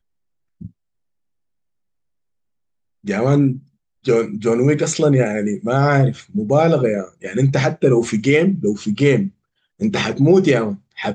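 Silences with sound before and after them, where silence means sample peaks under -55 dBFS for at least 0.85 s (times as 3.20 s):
0.71–3.04 s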